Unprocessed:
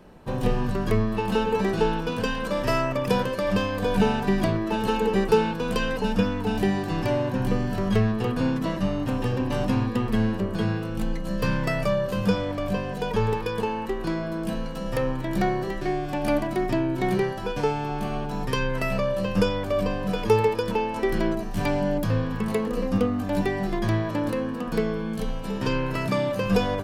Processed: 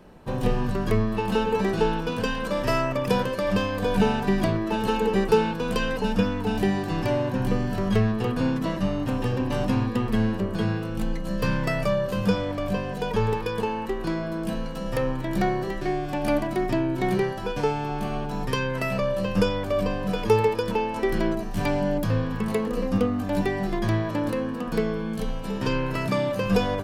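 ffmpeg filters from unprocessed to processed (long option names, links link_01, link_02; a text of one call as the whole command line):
ffmpeg -i in.wav -filter_complex "[0:a]asettb=1/sr,asplit=3[link_01][link_02][link_03];[link_01]atrim=end=18.554[link_04];[link_02]atrim=start=18.55:end=19.02,asetpts=PTS-STARTPTS,afade=type=in:duration=0.004:curve=qsin,afade=type=out:start_time=0.466:duration=0.004:curve=qsin,highpass=44[link_05];[link_03]atrim=start=19.016[link_06];[link_04][link_05]acrossfade=duration=0.004:curve1=hsin:curve2=qsin[link_07];[link_07][link_06]acrossfade=duration=0.004:curve1=qsin:curve2=hsin" out.wav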